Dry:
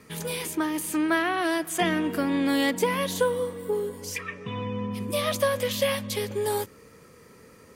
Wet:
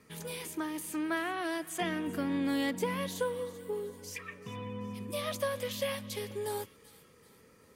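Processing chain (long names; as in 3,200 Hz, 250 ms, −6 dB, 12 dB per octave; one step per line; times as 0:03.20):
0:02.07–0:03.09: bass and treble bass +6 dB, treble −1 dB
delay with a high-pass on its return 385 ms, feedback 45%, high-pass 1,900 Hz, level −16 dB
level −9 dB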